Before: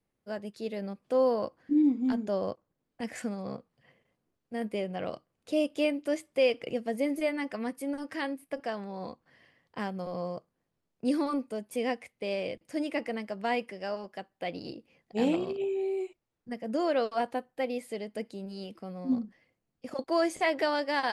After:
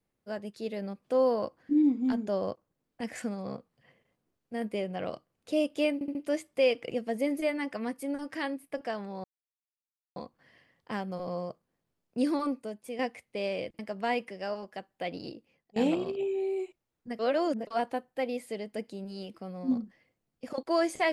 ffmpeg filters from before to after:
-filter_complex "[0:a]asplit=10[s0][s1][s2][s3][s4][s5][s6][s7][s8][s9];[s0]atrim=end=6.012[s10];[s1]atrim=start=5.938:end=6.012[s11];[s2]atrim=start=5.938:end=6.012[s12];[s3]atrim=start=5.938:end=9.03,asetpts=PTS-STARTPTS,afade=t=out:st=3.088:d=0.004:c=hsin,apad=pad_dur=0.92[s13];[s4]atrim=start=9.03:end=11.86,asetpts=PTS-STARTPTS,afade=t=in:d=0.004:c=hsin,afade=t=out:st=2.32:d=0.51:silence=0.354813[s14];[s5]atrim=start=11.86:end=12.662,asetpts=PTS-STARTPTS,afade=t=in:d=0.004:c=hsin:silence=0.354813[s15];[s6]atrim=start=13.198:end=15.17,asetpts=PTS-STARTPTS,afade=t=out:st=1.472:d=0.5:silence=0.125893[s16];[s7]atrim=start=15.17:end=16.602,asetpts=PTS-STARTPTS,afade=t=in:d=0.004:c=hsin:silence=0.125893[s17];[s8]atrim=start=16.598:end=17.082,asetpts=PTS-STARTPTS,areverse[s18];[s9]atrim=start=17.078[s19];[s10][s11]acrossfade=d=0.004:c1=hsin:c2=hsin[s20];[s20][s12]acrossfade=d=0.004:c1=hsin:c2=hsin[s21];[s13][s14][s15]concat=n=3:v=0:a=1[s22];[s21][s22]acrossfade=d=0.004:c1=hsin:c2=hsin[s23];[s16][s17]concat=n=2:v=0:a=1[s24];[s23][s24]acrossfade=d=0.004:c1=hsin:c2=hsin[s25];[s25][s18]acrossfade=d=0.004:c1=hsin:c2=hsin[s26];[s26][s19]acrossfade=d=0.004:c1=hsin:c2=hsin"

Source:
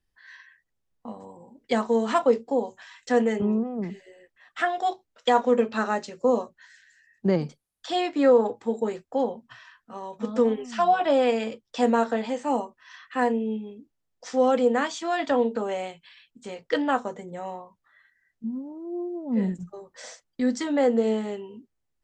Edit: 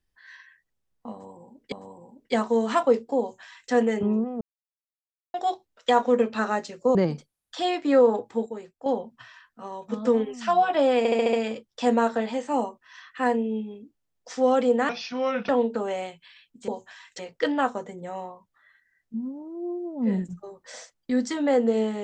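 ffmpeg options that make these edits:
-filter_complex "[0:a]asplit=16[s0][s1][s2][s3][s4][s5][s6][s7][s8][s9][s10][s11][s12][s13][s14][s15];[s0]atrim=end=1.722[s16];[s1]atrim=start=1.108:end=3.8,asetpts=PTS-STARTPTS,afade=t=out:st=2.688:d=0.004:c=hsin[s17];[s2]atrim=start=3.8:end=4.73,asetpts=PTS-STARTPTS,volume=0[s18];[s3]atrim=start=4.73:end=6.342,asetpts=PTS-STARTPTS,afade=t=in:d=0.004:c=hsin[s19];[s4]atrim=start=7.258:end=8.772[s20];[s5]atrim=start=8.768:end=9.172,asetpts=PTS-STARTPTS,volume=0.355[s21];[s6]atrim=start=9.168:end=11.362[s22];[s7]atrim=start=11.288:end=11.362[s23];[s8]atrim=start=11.288:end=11.362[s24];[s9]atrim=start=11.288:end=11.362[s25];[s10]atrim=start=11.288:end=11.362[s26];[s11]atrim=start=11.288:end=14.854[s27];[s12]atrim=start=14.85:end=15.3,asetpts=PTS-STARTPTS,asetrate=33075,aresample=44100[s28];[s13]atrim=start=15.296:end=16.492[s29];[s14]atrim=start=2.588:end=3.102[s30];[s15]atrim=start=16.488[s31];[s17][s18][s19]concat=n=3:v=0:a=1[s32];[s16][s32]acrossfade=d=0.004:c1=hsin:c2=hsin[s33];[s33][s20]acrossfade=d=0.004:c1=hsin:c2=hsin[s34];[s34][s21]acrossfade=d=0.004:c1=hsin:c2=hsin[s35];[s35][s22]acrossfade=d=0.004:c1=hsin:c2=hsin[s36];[s36][s23]acrossfade=d=0.004:c1=hsin:c2=hsin[s37];[s37][s24]acrossfade=d=0.004:c1=hsin:c2=hsin[s38];[s38][s25]acrossfade=d=0.004:c1=hsin:c2=hsin[s39];[s39][s26]acrossfade=d=0.004:c1=hsin:c2=hsin[s40];[s40][s27]acrossfade=d=0.004:c1=hsin:c2=hsin[s41];[s41][s28]acrossfade=d=0.004:c1=hsin:c2=hsin[s42];[s42][s29]acrossfade=d=0.004:c1=hsin:c2=hsin[s43];[s43][s30]acrossfade=d=0.004:c1=hsin:c2=hsin[s44];[s44][s31]acrossfade=d=0.004:c1=hsin:c2=hsin"

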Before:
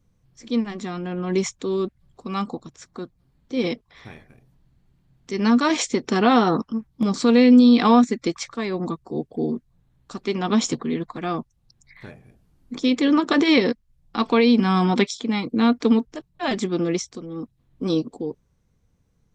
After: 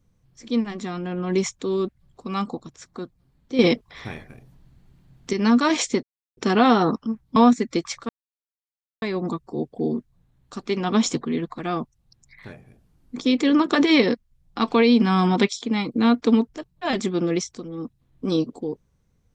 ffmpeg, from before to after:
-filter_complex "[0:a]asplit=6[s0][s1][s2][s3][s4][s5];[s0]atrim=end=3.592[s6];[s1]atrim=start=3.588:end=5.332,asetpts=PTS-STARTPTS,volume=2.24[s7];[s2]atrim=start=5.328:end=6.03,asetpts=PTS-STARTPTS,afade=t=out:st=0.698:d=0.004:c=hsin,apad=pad_dur=0.34[s8];[s3]atrim=start=6.03:end=7.022,asetpts=PTS-STARTPTS,afade=t=in:d=0.004:c=hsin[s9];[s4]atrim=start=7.868:end=8.6,asetpts=PTS-STARTPTS,afade=t=out:st=0.728:d=0.004:c=hsin,apad=pad_dur=0.93[s10];[s5]atrim=start=8.6,asetpts=PTS-STARTPTS,afade=t=in:d=0.004:c=hsin[s11];[s6][s7]acrossfade=d=0.004:c1=hsin:c2=hsin[s12];[s8][s9]concat=n=2:v=0:a=1[s13];[s12][s13]acrossfade=d=0.004:c1=hsin:c2=hsin[s14];[s10][s11]concat=n=2:v=0:a=1[s15];[s14][s15]acrossfade=d=0.004:c1=hsin:c2=hsin"

